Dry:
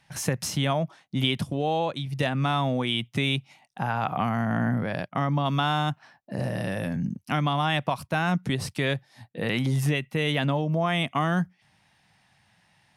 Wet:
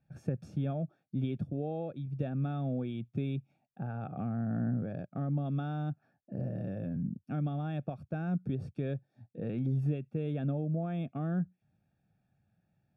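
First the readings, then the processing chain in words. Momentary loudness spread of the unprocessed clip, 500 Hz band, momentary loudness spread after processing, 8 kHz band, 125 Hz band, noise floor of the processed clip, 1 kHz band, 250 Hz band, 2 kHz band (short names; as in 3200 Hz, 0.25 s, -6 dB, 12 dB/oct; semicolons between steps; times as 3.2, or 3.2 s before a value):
6 LU, -10.5 dB, 7 LU, under -30 dB, -6.0 dB, -79 dBFS, -18.0 dB, -6.5 dB, -22.5 dB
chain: running mean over 44 samples; gain -5.5 dB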